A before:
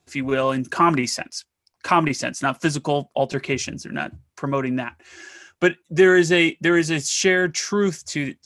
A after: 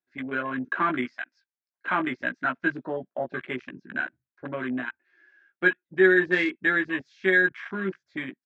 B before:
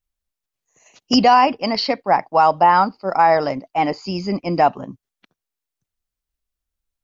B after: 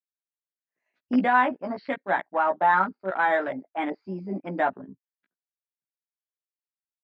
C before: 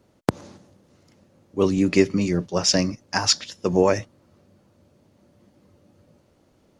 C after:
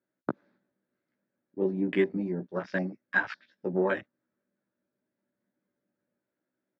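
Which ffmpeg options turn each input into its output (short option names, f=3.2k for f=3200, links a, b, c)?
-filter_complex "[0:a]highpass=250,equalizer=f=470:t=q:w=4:g=-7,equalizer=f=770:t=q:w=4:g=-7,equalizer=f=1.1k:t=q:w=4:g=-6,equalizer=f=1.6k:t=q:w=4:g=9,equalizer=f=2.9k:t=q:w=4:g=-10,lowpass=f=3.3k:w=0.5412,lowpass=f=3.3k:w=1.3066,asplit=2[a][b];[b]adelay=16,volume=-3.5dB[c];[a][c]amix=inputs=2:normalize=0,afwtdn=0.0398,volume=-6dB"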